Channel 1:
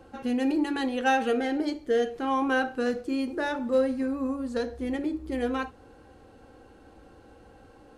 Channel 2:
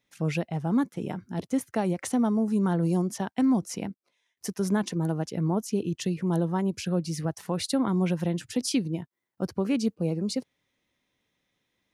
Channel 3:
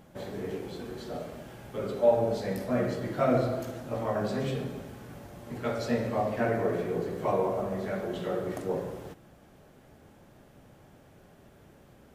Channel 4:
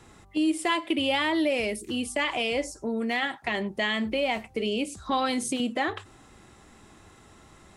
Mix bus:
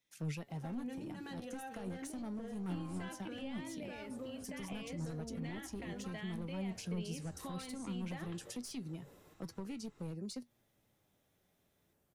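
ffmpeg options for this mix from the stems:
-filter_complex "[0:a]acompressor=threshold=0.0158:ratio=2,adelay=500,volume=0.668[s0];[1:a]highshelf=f=3700:g=10,volume=0.447,asplit=2[s1][s2];[2:a]highshelf=f=4600:g=7.5,adelay=200,volume=0.126[s3];[3:a]lowpass=6600,adelay=2350,volume=0.355[s4];[s2]apad=whole_len=544430[s5];[s3][s5]sidechaincompress=threshold=0.00562:ratio=8:attack=6.9:release=106[s6];[s6][s4]amix=inputs=2:normalize=0,highshelf=f=10000:g=9.5,alimiter=level_in=1.68:limit=0.0631:level=0:latency=1,volume=0.596,volume=1[s7];[s0][s1]amix=inputs=2:normalize=0,aeval=exprs='clip(val(0),-1,0.0376)':c=same,alimiter=level_in=1.68:limit=0.0631:level=0:latency=1,volume=0.596,volume=1[s8];[s7][s8]amix=inputs=2:normalize=0,acrossover=split=200[s9][s10];[s10]acompressor=threshold=0.01:ratio=6[s11];[s9][s11]amix=inputs=2:normalize=0,flanger=delay=6:depth=5.8:regen=67:speed=0.21:shape=triangular"

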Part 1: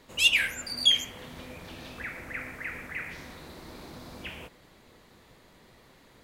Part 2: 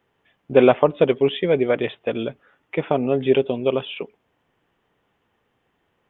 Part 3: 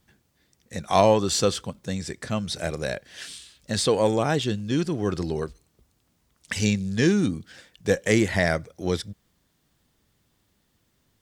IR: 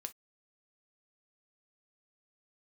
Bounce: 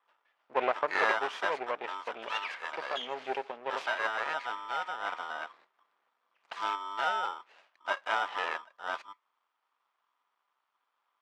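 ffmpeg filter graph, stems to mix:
-filter_complex "[0:a]adelay=2100,volume=0.447,asplit=2[s0][s1];[s1]volume=0.112[s2];[1:a]volume=0.631[s3];[2:a]adynamicequalizer=threshold=0.00891:dfrequency=4300:dqfactor=0.88:tfrequency=4300:tqfactor=0.88:attack=5:release=100:ratio=0.375:range=2.5:mode=cutabove:tftype=bell,aeval=exprs='val(0)*sgn(sin(2*PI*1100*n/s))':c=same,volume=0.596,asplit=3[s4][s5][s6];[s5]volume=0.398[s7];[s6]apad=whole_len=367701[s8];[s0][s8]sidechaingate=range=0.0224:threshold=0.002:ratio=16:detection=peak[s9];[3:a]atrim=start_sample=2205[s10];[s2][s7]amix=inputs=2:normalize=0[s11];[s11][s10]afir=irnorm=-1:irlink=0[s12];[s9][s3][s4][s12]amix=inputs=4:normalize=0,aeval=exprs='max(val(0),0)':c=same,highpass=760,lowpass=2200"

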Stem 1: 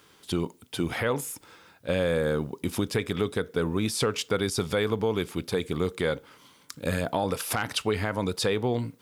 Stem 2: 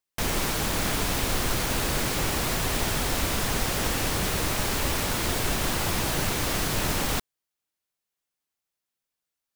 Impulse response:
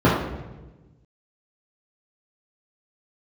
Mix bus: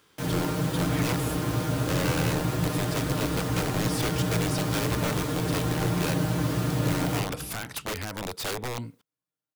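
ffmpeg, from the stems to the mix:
-filter_complex "[0:a]aeval=exprs='(mod(11.2*val(0)+1,2)-1)/11.2':c=same,volume=0.596[s0];[1:a]highpass=55,aecho=1:1:6.5:0.65,volume=0.251,asplit=2[s1][s2];[s2]volume=0.126[s3];[2:a]atrim=start_sample=2205[s4];[s3][s4]afir=irnorm=-1:irlink=0[s5];[s0][s1][s5]amix=inputs=3:normalize=0"

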